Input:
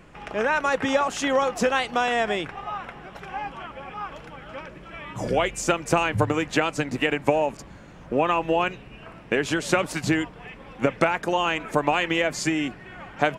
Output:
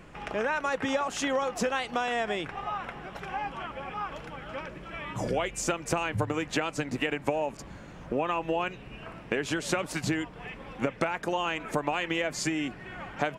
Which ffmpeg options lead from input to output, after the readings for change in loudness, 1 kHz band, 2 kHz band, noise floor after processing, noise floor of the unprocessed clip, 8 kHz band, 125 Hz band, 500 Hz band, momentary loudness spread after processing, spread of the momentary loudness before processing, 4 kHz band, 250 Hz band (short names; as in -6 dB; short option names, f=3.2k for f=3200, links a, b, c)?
-6.5 dB, -6.5 dB, -6.0 dB, -46 dBFS, -45 dBFS, -3.0 dB, -5.0 dB, -6.5 dB, 11 LU, 17 LU, -5.5 dB, -5.5 dB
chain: -af "acompressor=threshold=-30dB:ratio=2"